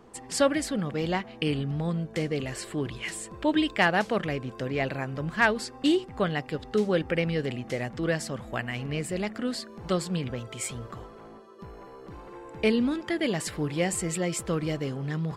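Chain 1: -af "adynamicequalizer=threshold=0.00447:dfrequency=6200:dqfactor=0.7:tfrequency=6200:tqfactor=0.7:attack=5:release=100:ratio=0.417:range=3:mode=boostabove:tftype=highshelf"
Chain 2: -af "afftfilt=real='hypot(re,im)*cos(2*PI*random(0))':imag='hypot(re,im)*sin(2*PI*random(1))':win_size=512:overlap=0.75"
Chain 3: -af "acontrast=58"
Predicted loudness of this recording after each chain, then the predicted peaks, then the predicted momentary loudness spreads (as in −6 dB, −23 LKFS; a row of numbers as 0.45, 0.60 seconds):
−28.5, −34.5, −22.5 LKFS; −9.0, −13.0, −5.0 dBFS; 12, 12, 12 LU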